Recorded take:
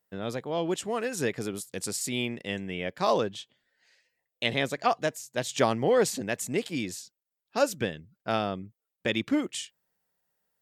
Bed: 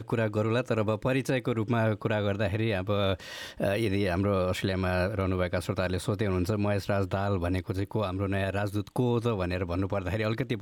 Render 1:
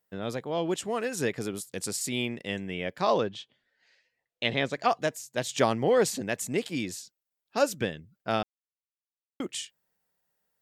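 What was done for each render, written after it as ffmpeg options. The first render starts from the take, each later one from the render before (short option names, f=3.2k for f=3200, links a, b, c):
-filter_complex "[0:a]asettb=1/sr,asplit=3[a][b][c];[a]atrim=end=3.014[d];[b]atrim=start=3.01:end=4.73,asetpts=PTS-STARTPTS,afade=t=in:d=0.004:c=qsin,afade=t=out:st=1.716:d=0.004:c=qsin,lowpass=5.2k[e];[c]atrim=start=4.726[f];[d][e]acrossfade=d=0.004:c1=hsin:c2=qsin[g];[g][f]acrossfade=d=0.004:c1=qsin:c2=hsin,asplit=3[h][i][j];[h]atrim=end=8.43,asetpts=PTS-STARTPTS,afade=t=out:st=8.426:d=0.004:c=hsin[k];[i]atrim=start=8.43:end=9.4,asetpts=PTS-STARTPTS,volume=0[l];[j]atrim=start=9.4,asetpts=PTS-STARTPTS,afade=t=in:d=0.004:c=hsin[m];[k][l][m]concat=n=3:v=0:a=1"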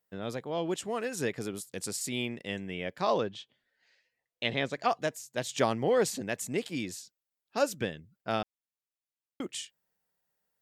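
-af "volume=-3dB"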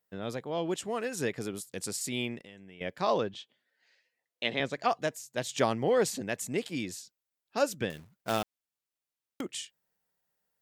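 -filter_complex "[0:a]asettb=1/sr,asplit=3[a][b][c];[a]atrim=end=2.394[d];[b]atrim=start=2.39:end=2.81,asetpts=PTS-STARTPTS,afade=t=in:d=0.004:c=qsin,afade=t=out:st=0.416:d=0.004:c=qsin,acompressor=threshold=-49dB:ratio=4:attack=3.2:release=140:knee=1:detection=peak[e];[c]atrim=start=2.806[f];[d][e]acrossfade=d=0.004:c1=hsin:c2=qsin[g];[g][f]acrossfade=d=0.004:c1=qsin:c2=hsin,asettb=1/sr,asplit=3[h][i][j];[h]atrim=end=3.344[k];[i]atrim=start=3.34:end=4.6,asetpts=PTS-STARTPTS,afade=t=in:d=0.004:c=qsin,afade=t=out:st=1.256:d=0.004:c=qsin,highpass=190[l];[j]atrim=start=4.596[m];[k][l]acrossfade=d=0.004:c1=hsin:c2=qsin[n];[n][m]acrossfade=d=0.004:c1=qsin:c2=hsin,asettb=1/sr,asplit=3[o][p][q];[o]atrim=end=7.904[r];[p]atrim=start=7.9:end=9.41,asetpts=PTS-STARTPTS,afade=t=in:d=0.004:c=qsin,afade=t=out:st=1.506:d=0.004:c=qsin,acrusher=bits=2:mode=log:mix=0:aa=0.000001[s];[q]atrim=start=9.406[t];[r][s]acrossfade=d=0.004:c1=hsin:c2=qsin[u];[u][t]acrossfade=d=0.004:c1=qsin:c2=hsin"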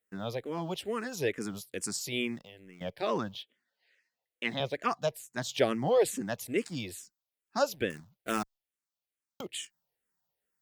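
-filter_complex "[0:a]asplit=2[a][b];[b]aeval=exprs='val(0)*gte(abs(val(0)),0.00531)':c=same,volume=-8dB[c];[a][c]amix=inputs=2:normalize=0,asplit=2[d][e];[e]afreqshift=-2.3[f];[d][f]amix=inputs=2:normalize=1"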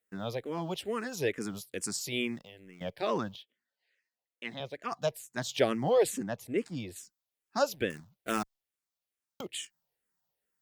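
-filter_complex "[0:a]asettb=1/sr,asplit=3[a][b][c];[a]atrim=end=6.234[d];[b]atrim=start=6.23:end=6.96,asetpts=PTS-STARTPTS,afade=t=in:d=0.004:c=qsin,afade=t=out:st=0.726:d=0.004:c=qsin,highshelf=f=2k:g=-9[e];[c]atrim=start=6.956[f];[d][e]acrossfade=d=0.004:c1=hsin:c2=qsin[g];[g][f]acrossfade=d=0.004:c1=qsin:c2=hsin,asplit=3[h][i][j];[h]atrim=end=3.362[k];[i]atrim=start=3.358:end=4.922,asetpts=PTS-STARTPTS,volume=-7dB[l];[j]atrim=start=4.918[m];[k][l]acrossfade=d=0.004:c1=hsin:c2=hsin[n];[n][m]acrossfade=d=0.004:c1=hsin:c2=hsin"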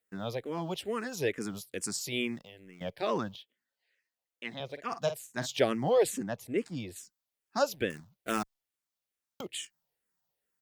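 -filter_complex "[0:a]asplit=3[a][b][c];[a]afade=t=out:st=4.69:d=0.02[d];[b]asplit=2[e][f];[f]adelay=49,volume=-10dB[g];[e][g]amix=inputs=2:normalize=0,afade=t=in:st=4.69:d=0.02,afade=t=out:st=5.45:d=0.02[h];[c]afade=t=in:st=5.45:d=0.02[i];[d][h][i]amix=inputs=3:normalize=0"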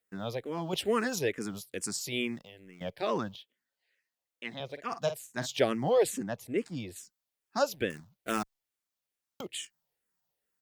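-filter_complex "[0:a]asettb=1/sr,asplit=3[a][b][c];[a]atrim=end=0.734[d];[b]atrim=start=0.73:end=1.19,asetpts=PTS-STARTPTS,afade=t=in:d=0.004:c=qsin,afade=t=out:st=0.456:d=0.004:c=qsin,acontrast=54[e];[c]atrim=start=1.186[f];[d][e]acrossfade=d=0.004:c1=hsin:c2=qsin[g];[g][f]acrossfade=d=0.004:c1=qsin:c2=hsin"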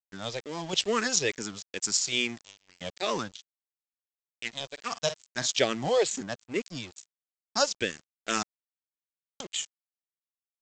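-af "aresample=16000,aeval=exprs='sgn(val(0))*max(abs(val(0))-0.00473,0)':c=same,aresample=44100,crystalizer=i=5.5:c=0"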